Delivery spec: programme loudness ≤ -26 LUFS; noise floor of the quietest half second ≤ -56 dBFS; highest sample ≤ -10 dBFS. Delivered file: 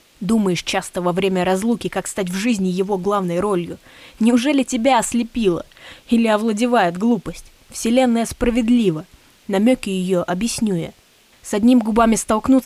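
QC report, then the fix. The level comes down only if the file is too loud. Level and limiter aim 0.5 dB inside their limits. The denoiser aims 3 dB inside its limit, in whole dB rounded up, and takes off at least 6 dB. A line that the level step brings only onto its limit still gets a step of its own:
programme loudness -18.5 LUFS: fail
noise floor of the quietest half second -53 dBFS: fail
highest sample -4.5 dBFS: fail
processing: gain -8 dB

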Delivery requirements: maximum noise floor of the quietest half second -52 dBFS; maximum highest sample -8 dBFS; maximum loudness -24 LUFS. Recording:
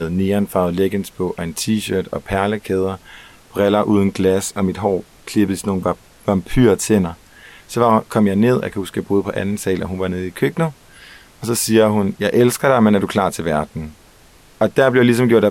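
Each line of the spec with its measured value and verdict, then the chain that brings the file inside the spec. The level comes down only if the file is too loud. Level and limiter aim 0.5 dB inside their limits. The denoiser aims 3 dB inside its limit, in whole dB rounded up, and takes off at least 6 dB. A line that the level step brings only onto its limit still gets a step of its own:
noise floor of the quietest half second -47 dBFS: fail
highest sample -2.5 dBFS: fail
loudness -17.5 LUFS: fail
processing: gain -7 dB

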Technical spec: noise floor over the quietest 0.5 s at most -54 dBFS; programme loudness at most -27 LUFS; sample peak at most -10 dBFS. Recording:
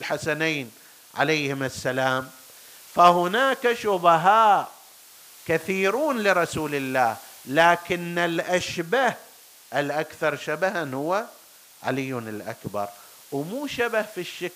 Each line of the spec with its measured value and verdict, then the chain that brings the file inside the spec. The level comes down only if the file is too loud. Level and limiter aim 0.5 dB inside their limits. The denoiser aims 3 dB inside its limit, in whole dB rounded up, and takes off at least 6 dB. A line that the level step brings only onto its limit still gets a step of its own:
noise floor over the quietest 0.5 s -50 dBFS: fail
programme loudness -23.5 LUFS: fail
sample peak -4.5 dBFS: fail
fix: denoiser 6 dB, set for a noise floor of -50 dBFS; gain -4 dB; limiter -10.5 dBFS

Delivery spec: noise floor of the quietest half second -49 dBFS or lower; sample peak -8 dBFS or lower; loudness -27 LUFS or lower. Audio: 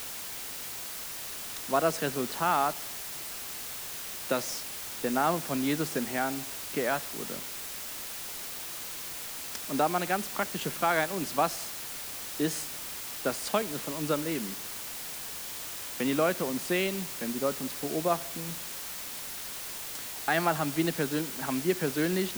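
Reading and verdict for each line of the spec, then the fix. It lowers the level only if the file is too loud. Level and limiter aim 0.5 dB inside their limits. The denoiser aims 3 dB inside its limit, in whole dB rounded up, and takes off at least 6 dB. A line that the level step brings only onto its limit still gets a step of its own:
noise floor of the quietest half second -39 dBFS: fail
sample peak -12.5 dBFS: OK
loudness -31.5 LUFS: OK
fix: denoiser 13 dB, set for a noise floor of -39 dBFS

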